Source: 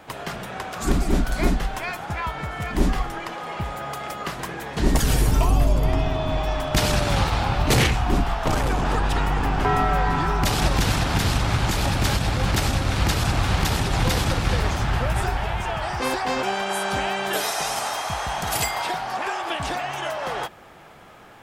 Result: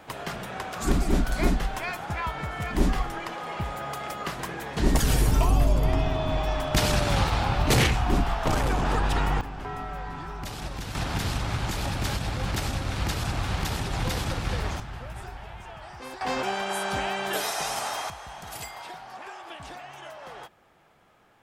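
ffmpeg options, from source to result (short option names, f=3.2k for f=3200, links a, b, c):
-af "asetnsamples=n=441:p=0,asendcmd='9.41 volume volume -14.5dB;10.95 volume volume -7dB;14.8 volume volume -15.5dB;16.21 volume volume -4dB;18.1 volume volume -14dB',volume=-2.5dB"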